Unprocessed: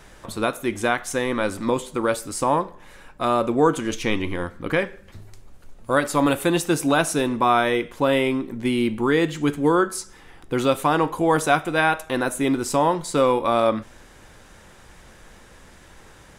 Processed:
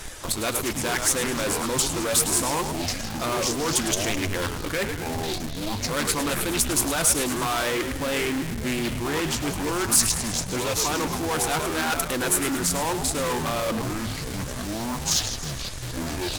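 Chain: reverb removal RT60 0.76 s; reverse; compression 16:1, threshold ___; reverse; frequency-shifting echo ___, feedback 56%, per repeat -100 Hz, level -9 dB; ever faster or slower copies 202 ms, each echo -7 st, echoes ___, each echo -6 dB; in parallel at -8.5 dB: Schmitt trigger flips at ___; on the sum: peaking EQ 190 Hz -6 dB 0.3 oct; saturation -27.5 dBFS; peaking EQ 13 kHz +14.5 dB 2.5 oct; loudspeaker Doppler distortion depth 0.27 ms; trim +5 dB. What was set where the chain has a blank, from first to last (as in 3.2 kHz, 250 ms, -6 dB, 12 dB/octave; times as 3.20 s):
-28 dBFS, 106 ms, 2, -38.5 dBFS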